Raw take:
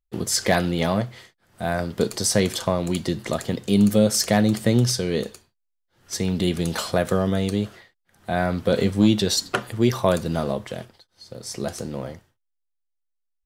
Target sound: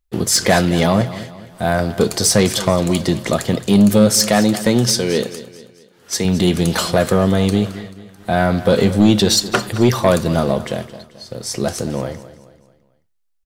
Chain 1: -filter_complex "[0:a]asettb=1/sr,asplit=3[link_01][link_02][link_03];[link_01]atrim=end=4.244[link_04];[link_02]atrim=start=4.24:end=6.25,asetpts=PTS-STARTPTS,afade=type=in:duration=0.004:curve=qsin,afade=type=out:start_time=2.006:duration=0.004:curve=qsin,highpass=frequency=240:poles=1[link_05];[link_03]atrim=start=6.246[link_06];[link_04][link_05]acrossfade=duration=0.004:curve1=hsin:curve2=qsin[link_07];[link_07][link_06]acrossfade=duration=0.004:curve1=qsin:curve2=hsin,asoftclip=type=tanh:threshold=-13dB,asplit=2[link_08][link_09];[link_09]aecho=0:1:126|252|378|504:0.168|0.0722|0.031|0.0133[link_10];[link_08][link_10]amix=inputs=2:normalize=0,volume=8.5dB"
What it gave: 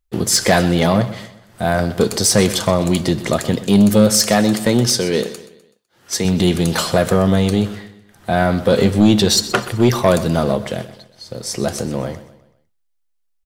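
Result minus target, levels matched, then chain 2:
echo 92 ms early
-filter_complex "[0:a]asettb=1/sr,asplit=3[link_01][link_02][link_03];[link_01]atrim=end=4.244[link_04];[link_02]atrim=start=4.24:end=6.25,asetpts=PTS-STARTPTS,afade=type=in:duration=0.004:curve=qsin,afade=type=out:start_time=2.006:duration=0.004:curve=qsin,highpass=frequency=240:poles=1[link_05];[link_03]atrim=start=6.246[link_06];[link_04][link_05]acrossfade=duration=0.004:curve1=hsin:curve2=qsin[link_07];[link_07][link_06]acrossfade=duration=0.004:curve1=qsin:curve2=hsin,asoftclip=type=tanh:threshold=-13dB,asplit=2[link_08][link_09];[link_09]aecho=0:1:218|436|654|872:0.168|0.0722|0.031|0.0133[link_10];[link_08][link_10]amix=inputs=2:normalize=0,volume=8.5dB"

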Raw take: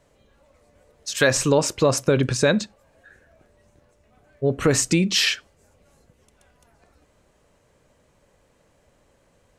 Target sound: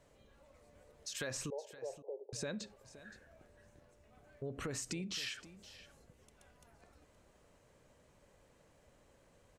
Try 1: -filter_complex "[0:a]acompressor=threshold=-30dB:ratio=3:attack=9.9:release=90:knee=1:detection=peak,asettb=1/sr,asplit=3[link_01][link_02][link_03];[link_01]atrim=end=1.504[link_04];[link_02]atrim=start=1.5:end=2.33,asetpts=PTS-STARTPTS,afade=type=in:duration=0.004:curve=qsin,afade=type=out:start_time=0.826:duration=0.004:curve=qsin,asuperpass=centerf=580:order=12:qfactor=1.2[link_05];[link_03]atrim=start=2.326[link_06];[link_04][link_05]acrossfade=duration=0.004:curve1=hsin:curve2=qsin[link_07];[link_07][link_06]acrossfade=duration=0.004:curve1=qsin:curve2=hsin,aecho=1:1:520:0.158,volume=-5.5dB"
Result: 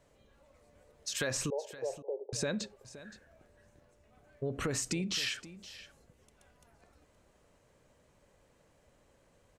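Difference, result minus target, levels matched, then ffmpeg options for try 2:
downward compressor: peak gain reduction −7 dB
-filter_complex "[0:a]acompressor=threshold=-40.5dB:ratio=3:attack=9.9:release=90:knee=1:detection=peak,asettb=1/sr,asplit=3[link_01][link_02][link_03];[link_01]atrim=end=1.504[link_04];[link_02]atrim=start=1.5:end=2.33,asetpts=PTS-STARTPTS,afade=type=in:duration=0.004:curve=qsin,afade=type=out:start_time=0.826:duration=0.004:curve=qsin,asuperpass=centerf=580:order=12:qfactor=1.2[link_05];[link_03]atrim=start=2.326[link_06];[link_04][link_05]acrossfade=duration=0.004:curve1=hsin:curve2=qsin[link_07];[link_07][link_06]acrossfade=duration=0.004:curve1=qsin:curve2=hsin,aecho=1:1:520:0.158,volume=-5.5dB"

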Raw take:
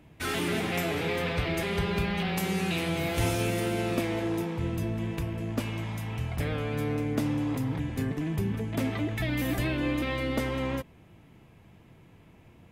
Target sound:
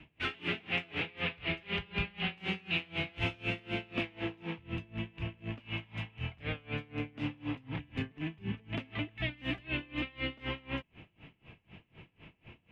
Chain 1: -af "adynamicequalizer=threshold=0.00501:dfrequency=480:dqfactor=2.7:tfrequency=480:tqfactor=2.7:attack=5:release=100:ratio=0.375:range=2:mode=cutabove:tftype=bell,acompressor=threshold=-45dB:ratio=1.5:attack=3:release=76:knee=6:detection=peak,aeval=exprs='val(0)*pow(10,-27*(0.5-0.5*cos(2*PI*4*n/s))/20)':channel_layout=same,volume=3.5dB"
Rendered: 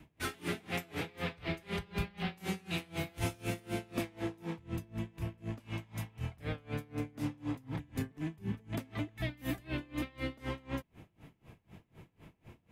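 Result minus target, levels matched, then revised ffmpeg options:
2,000 Hz band −4.0 dB
-af "adynamicequalizer=threshold=0.00501:dfrequency=480:dqfactor=2.7:tfrequency=480:tqfactor=2.7:attack=5:release=100:ratio=0.375:range=2:mode=cutabove:tftype=bell,lowpass=frequency=2800:width_type=q:width=4,acompressor=threshold=-45dB:ratio=1.5:attack=3:release=76:knee=6:detection=peak,aeval=exprs='val(0)*pow(10,-27*(0.5-0.5*cos(2*PI*4*n/s))/20)':channel_layout=same,volume=3.5dB"

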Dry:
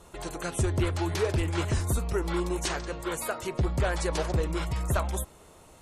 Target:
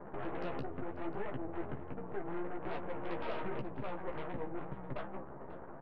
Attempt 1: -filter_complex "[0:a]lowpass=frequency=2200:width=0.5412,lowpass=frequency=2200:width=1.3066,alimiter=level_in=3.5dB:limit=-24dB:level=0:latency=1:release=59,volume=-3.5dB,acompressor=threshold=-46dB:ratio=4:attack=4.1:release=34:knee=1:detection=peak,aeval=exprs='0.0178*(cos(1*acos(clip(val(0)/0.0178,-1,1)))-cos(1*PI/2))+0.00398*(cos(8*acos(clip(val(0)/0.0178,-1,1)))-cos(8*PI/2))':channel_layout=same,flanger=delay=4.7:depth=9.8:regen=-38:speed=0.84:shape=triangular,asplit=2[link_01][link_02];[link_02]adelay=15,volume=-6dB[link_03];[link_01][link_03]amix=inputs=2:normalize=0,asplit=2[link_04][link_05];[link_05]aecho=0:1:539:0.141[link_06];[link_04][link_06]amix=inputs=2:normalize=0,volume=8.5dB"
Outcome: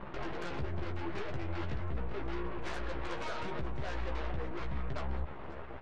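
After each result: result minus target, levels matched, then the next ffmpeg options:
125 Hz band +5.0 dB; 2,000 Hz band +2.5 dB
-filter_complex "[0:a]lowpass=frequency=2200:width=0.5412,lowpass=frequency=2200:width=1.3066,alimiter=level_in=3.5dB:limit=-24dB:level=0:latency=1:release=59,volume=-3.5dB,acompressor=threshold=-46dB:ratio=4:attack=4.1:release=34:knee=1:detection=peak,highpass=frequency=140:width=0.5412,highpass=frequency=140:width=1.3066,aeval=exprs='0.0178*(cos(1*acos(clip(val(0)/0.0178,-1,1)))-cos(1*PI/2))+0.00398*(cos(8*acos(clip(val(0)/0.0178,-1,1)))-cos(8*PI/2))':channel_layout=same,flanger=delay=4.7:depth=9.8:regen=-38:speed=0.84:shape=triangular,asplit=2[link_01][link_02];[link_02]adelay=15,volume=-6dB[link_03];[link_01][link_03]amix=inputs=2:normalize=0,asplit=2[link_04][link_05];[link_05]aecho=0:1:539:0.141[link_06];[link_04][link_06]amix=inputs=2:normalize=0,volume=8.5dB"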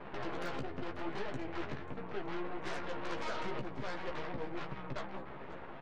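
2,000 Hz band +4.5 dB
-filter_complex "[0:a]lowpass=frequency=920:width=0.5412,lowpass=frequency=920:width=1.3066,alimiter=level_in=3.5dB:limit=-24dB:level=0:latency=1:release=59,volume=-3.5dB,acompressor=threshold=-46dB:ratio=4:attack=4.1:release=34:knee=1:detection=peak,highpass=frequency=140:width=0.5412,highpass=frequency=140:width=1.3066,aeval=exprs='0.0178*(cos(1*acos(clip(val(0)/0.0178,-1,1)))-cos(1*PI/2))+0.00398*(cos(8*acos(clip(val(0)/0.0178,-1,1)))-cos(8*PI/2))':channel_layout=same,flanger=delay=4.7:depth=9.8:regen=-38:speed=0.84:shape=triangular,asplit=2[link_01][link_02];[link_02]adelay=15,volume=-6dB[link_03];[link_01][link_03]amix=inputs=2:normalize=0,asplit=2[link_04][link_05];[link_05]aecho=0:1:539:0.141[link_06];[link_04][link_06]amix=inputs=2:normalize=0,volume=8.5dB"

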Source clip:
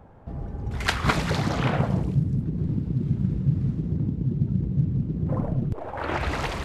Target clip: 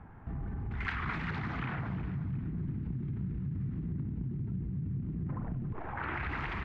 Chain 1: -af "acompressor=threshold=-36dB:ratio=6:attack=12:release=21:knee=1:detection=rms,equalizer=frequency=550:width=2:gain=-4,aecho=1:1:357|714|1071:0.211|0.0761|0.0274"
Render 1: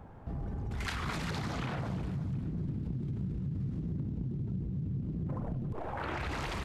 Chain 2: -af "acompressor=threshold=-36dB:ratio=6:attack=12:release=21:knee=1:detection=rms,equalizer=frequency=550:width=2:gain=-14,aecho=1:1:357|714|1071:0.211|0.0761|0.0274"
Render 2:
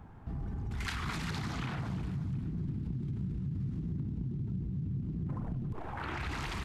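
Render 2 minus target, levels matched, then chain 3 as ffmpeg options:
2,000 Hz band −3.5 dB
-af "acompressor=threshold=-36dB:ratio=6:attack=12:release=21:knee=1:detection=rms,lowpass=frequency=2000:width_type=q:width=1.6,equalizer=frequency=550:width=2:gain=-14,aecho=1:1:357|714|1071:0.211|0.0761|0.0274"

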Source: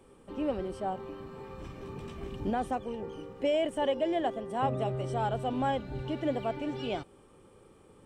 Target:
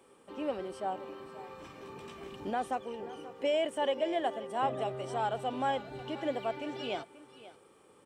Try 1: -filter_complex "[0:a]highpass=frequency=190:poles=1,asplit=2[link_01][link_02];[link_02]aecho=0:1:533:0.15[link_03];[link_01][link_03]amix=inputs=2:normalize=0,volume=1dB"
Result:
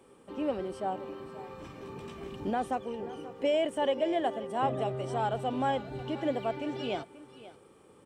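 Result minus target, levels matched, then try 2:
250 Hz band +3.0 dB
-filter_complex "[0:a]highpass=frequency=530:poles=1,asplit=2[link_01][link_02];[link_02]aecho=0:1:533:0.15[link_03];[link_01][link_03]amix=inputs=2:normalize=0,volume=1dB"

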